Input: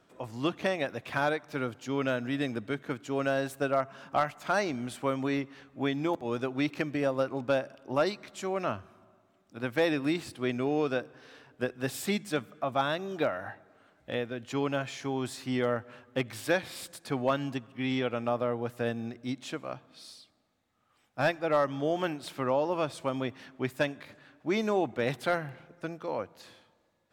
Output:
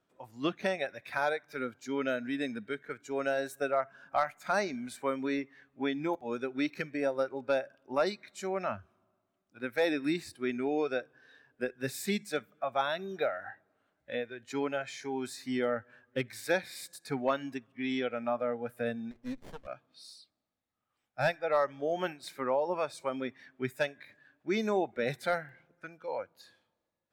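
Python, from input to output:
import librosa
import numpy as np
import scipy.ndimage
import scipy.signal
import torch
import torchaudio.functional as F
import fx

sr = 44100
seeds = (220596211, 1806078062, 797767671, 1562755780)

y = fx.noise_reduce_blind(x, sr, reduce_db=12)
y = fx.running_max(y, sr, window=33, at=(19.11, 19.67))
y = F.gain(torch.from_numpy(y), -1.5).numpy()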